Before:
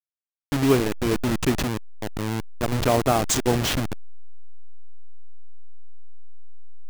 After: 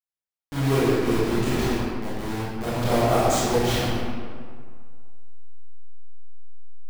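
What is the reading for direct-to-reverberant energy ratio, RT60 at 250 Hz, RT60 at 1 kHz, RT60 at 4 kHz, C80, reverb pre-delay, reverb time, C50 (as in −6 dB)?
−11.0 dB, 1.8 s, 2.0 s, 1.2 s, −1.5 dB, 19 ms, 2.0 s, −4.0 dB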